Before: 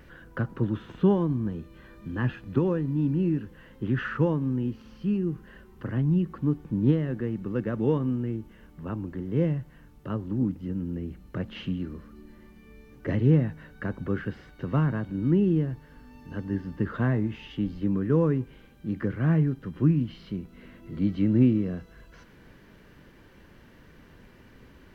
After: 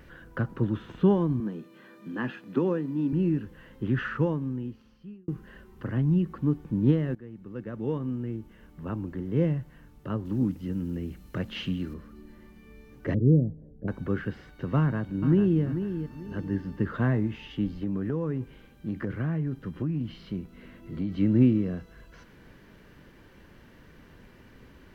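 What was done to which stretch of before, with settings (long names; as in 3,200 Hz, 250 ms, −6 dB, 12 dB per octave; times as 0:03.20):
0:01.40–0:03.13: high-pass filter 180 Hz 24 dB per octave
0:03.99–0:05.28: fade out
0:07.15–0:08.87: fade in, from −16.5 dB
0:10.25–0:11.94: high-shelf EQ 2,600 Hz +9 dB
0:13.14–0:13.88: inverse Chebyshev low-pass filter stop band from 1,100 Hz
0:14.78–0:15.62: delay throw 440 ms, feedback 30%, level −9 dB
0:17.69–0:21.12: downward compressor, threshold −25 dBFS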